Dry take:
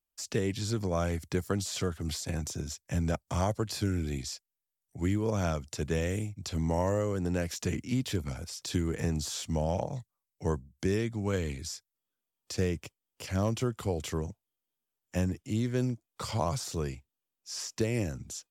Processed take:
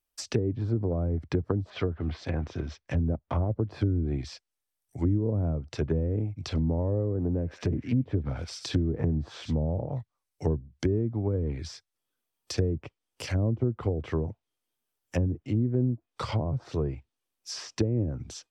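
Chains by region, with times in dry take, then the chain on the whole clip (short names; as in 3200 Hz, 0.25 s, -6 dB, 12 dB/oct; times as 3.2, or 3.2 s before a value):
1.7–3.5 block floating point 5-bit + LPF 3600 Hz + bell 130 Hz -7.5 dB 0.31 oct
6.3–9.95 thin delay 98 ms, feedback 52%, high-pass 1800 Hz, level -10 dB + Doppler distortion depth 0.2 ms
whole clip: treble ducked by the level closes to 360 Hz, closed at -26.5 dBFS; bell 190 Hz -8.5 dB 0.28 oct; notch 7000 Hz, Q 11; gain +5.5 dB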